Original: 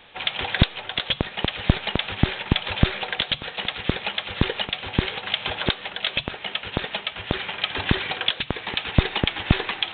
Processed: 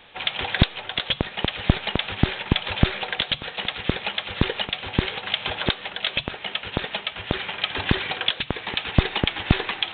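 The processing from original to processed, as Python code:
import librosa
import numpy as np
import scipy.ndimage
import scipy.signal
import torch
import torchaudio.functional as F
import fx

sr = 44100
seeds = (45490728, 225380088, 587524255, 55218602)

y = fx.doppler_dist(x, sr, depth_ms=0.21)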